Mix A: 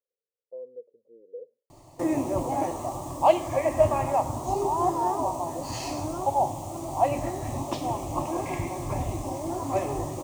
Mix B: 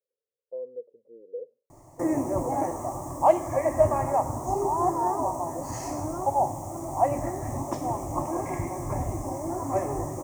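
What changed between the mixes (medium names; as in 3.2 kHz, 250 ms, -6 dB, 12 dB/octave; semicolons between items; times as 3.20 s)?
speech +4.0 dB; master: add high-order bell 3.4 kHz -15.5 dB 1.1 oct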